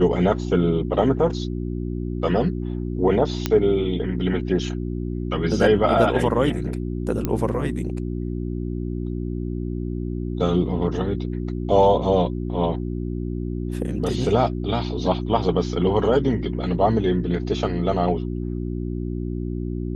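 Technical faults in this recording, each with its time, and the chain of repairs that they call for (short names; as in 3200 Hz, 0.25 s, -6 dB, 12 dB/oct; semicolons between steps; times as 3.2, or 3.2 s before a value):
hum 60 Hz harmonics 6 -27 dBFS
3.46 pop -7 dBFS
7.25 pop -10 dBFS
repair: de-click; de-hum 60 Hz, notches 6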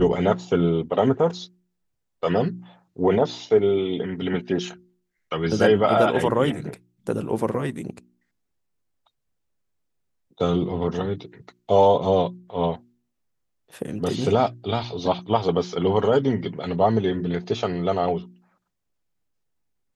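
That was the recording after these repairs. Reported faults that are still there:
none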